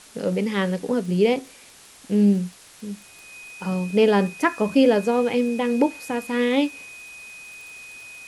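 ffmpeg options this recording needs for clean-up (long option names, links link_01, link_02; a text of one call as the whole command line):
ffmpeg -i in.wav -af "adeclick=threshold=4,bandreject=frequency=2500:width=30,afwtdn=0.005" out.wav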